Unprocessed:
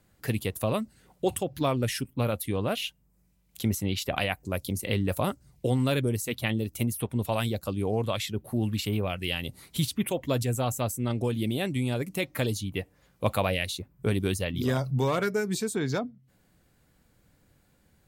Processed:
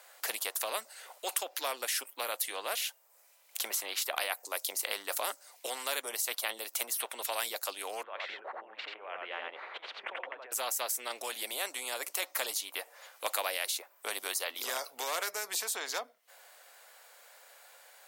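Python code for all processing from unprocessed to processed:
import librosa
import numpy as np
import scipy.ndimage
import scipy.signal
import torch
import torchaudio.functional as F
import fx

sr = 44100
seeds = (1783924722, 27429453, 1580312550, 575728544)

y = fx.chain(x, sr, fx.lowpass(hz=1700.0, slope=24),
    fx.over_compress(threshold_db=-39.0, ratio=-1.0),
    fx.echo_single(ms=86, db=-3.5), at=(8.03, 10.52))
y = scipy.signal.sosfilt(scipy.signal.butter(6, 570.0, 'highpass', fs=sr, output='sos'), y)
y = fx.dynamic_eq(y, sr, hz=2800.0, q=1.4, threshold_db=-46.0, ratio=4.0, max_db=-5)
y = fx.spectral_comp(y, sr, ratio=2.0)
y = y * librosa.db_to_amplitude(3.5)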